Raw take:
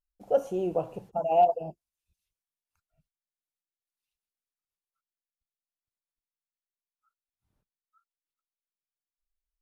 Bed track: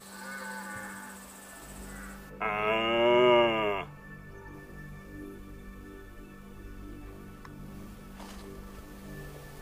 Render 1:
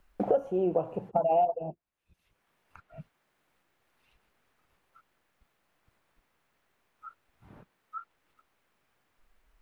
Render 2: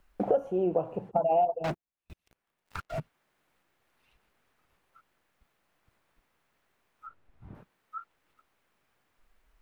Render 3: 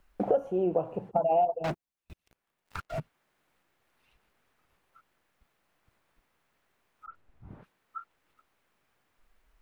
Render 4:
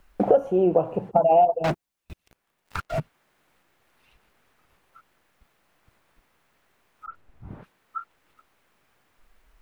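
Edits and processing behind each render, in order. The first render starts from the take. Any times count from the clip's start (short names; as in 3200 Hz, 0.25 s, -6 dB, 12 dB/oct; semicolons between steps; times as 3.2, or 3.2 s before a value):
three-band squash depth 100%
0.55–1.11 decimation joined by straight lines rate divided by 2×; 1.64–3 sample leveller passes 5; 7.07–7.55 tilt -2.5 dB/oct
7.06–7.96 dispersion highs, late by 99 ms, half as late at 2900 Hz
gain +7.5 dB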